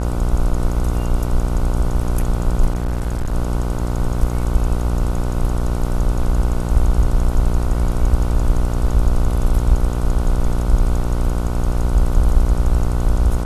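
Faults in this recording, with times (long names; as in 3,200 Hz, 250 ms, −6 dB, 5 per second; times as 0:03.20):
mains buzz 60 Hz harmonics 25 −21 dBFS
0:02.70–0:03.33: clipping −16.5 dBFS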